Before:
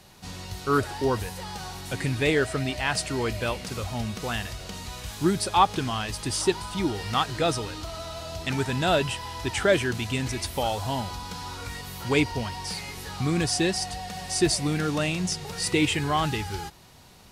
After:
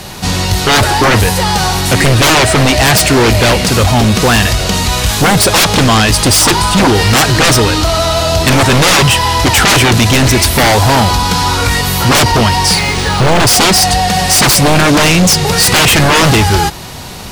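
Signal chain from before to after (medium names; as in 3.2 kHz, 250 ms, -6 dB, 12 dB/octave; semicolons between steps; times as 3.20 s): sine folder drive 19 dB, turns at -7 dBFS; 12.75–13.47 s: decimation joined by straight lines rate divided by 3×; trim +2.5 dB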